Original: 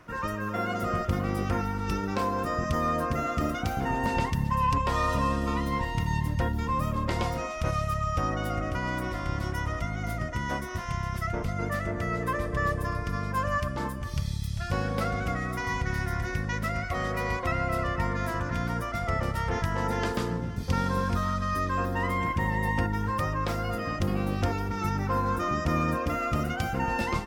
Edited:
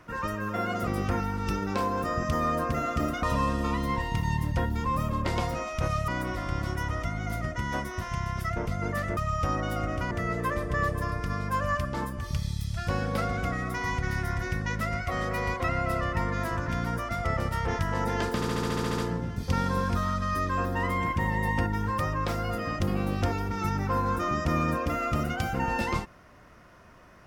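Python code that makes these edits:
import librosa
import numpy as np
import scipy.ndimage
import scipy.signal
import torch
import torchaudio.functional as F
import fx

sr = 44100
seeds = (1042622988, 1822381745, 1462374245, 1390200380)

y = fx.edit(x, sr, fx.cut(start_s=0.87, length_s=0.41),
    fx.cut(start_s=3.64, length_s=1.42),
    fx.move(start_s=7.91, length_s=0.94, to_s=11.94),
    fx.stutter(start_s=20.18, slice_s=0.07, count=10), tone=tone)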